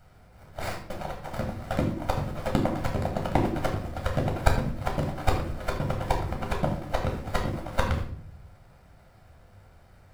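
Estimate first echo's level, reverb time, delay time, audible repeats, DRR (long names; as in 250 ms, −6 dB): no echo audible, 0.60 s, no echo audible, no echo audible, 0.5 dB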